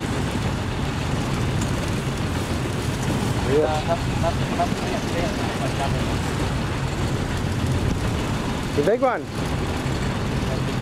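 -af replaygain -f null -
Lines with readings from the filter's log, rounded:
track_gain = +5.3 dB
track_peak = 0.307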